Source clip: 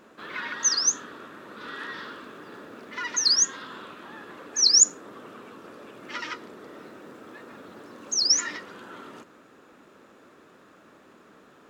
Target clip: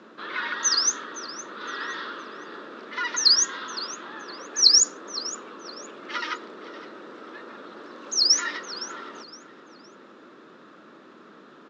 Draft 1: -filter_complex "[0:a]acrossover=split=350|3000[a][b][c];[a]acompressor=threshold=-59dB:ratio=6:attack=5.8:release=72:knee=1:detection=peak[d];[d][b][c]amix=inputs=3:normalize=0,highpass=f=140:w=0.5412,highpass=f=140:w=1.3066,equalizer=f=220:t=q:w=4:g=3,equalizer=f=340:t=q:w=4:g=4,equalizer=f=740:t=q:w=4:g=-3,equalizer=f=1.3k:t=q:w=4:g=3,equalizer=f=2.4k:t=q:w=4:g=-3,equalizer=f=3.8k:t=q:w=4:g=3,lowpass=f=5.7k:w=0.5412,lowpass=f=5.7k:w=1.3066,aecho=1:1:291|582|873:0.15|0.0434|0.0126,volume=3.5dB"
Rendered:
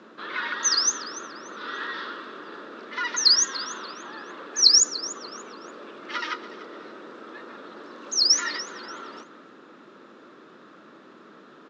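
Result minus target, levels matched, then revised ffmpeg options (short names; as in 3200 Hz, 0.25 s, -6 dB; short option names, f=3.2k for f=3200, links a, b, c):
echo 0.223 s early
-filter_complex "[0:a]acrossover=split=350|3000[a][b][c];[a]acompressor=threshold=-59dB:ratio=6:attack=5.8:release=72:knee=1:detection=peak[d];[d][b][c]amix=inputs=3:normalize=0,highpass=f=140:w=0.5412,highpass=f=140:w=1.3066,equalizer=f=220:t=q:w=4:g=3,equalizer=f=340:t=q:w=4:g=4,equalizer=f=740:t=q:w=4:g=-3,equalizer=f=1.3k:t=q:w=4:g=3,equalizer=f=2.4k:t=q:w=4:g=-3,equalizer=f=3.8k:t=q:w=4:g=3,lowpass=f=5.7k:w=0.5412,lowpass=f=5.7k:w=1.3066,aecho=1:1:514|1028|1542:0.15|0.0434|0.0126,volume=3.5dB"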